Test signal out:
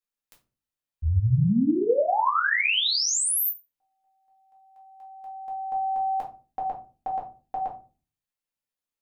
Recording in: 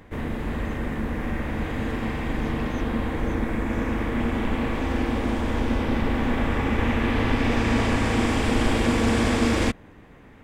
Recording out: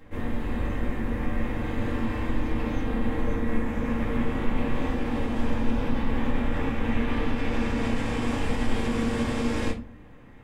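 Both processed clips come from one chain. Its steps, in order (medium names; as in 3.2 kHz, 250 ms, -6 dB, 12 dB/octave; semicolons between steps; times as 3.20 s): peak limiter -17.5 dBFS; simulated room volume 170 m³, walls furnished, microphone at 2.2 m; trim -7.5 dB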